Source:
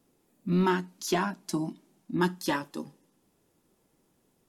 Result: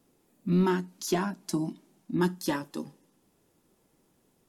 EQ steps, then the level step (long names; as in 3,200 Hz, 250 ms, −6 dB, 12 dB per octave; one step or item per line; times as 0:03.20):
dynamic equaliser 2,900 Hz, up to −5 dB, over −43 dBFS, Q 0.71
dynamic equaliser 1,000 Hz, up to −4 dB, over −41 dBFS, Q 0.8
+1.5 dB